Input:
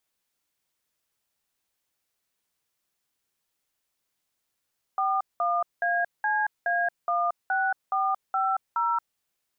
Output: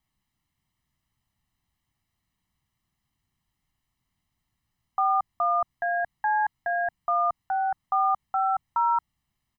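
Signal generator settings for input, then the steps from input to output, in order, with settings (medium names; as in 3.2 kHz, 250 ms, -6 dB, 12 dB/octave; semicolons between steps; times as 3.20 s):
DTMF "41ACA16450", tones 227 ms, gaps 193 ms, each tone -25 dBFS
tone controls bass +15 dB, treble -8 dB; comb 1 ms, depth 74%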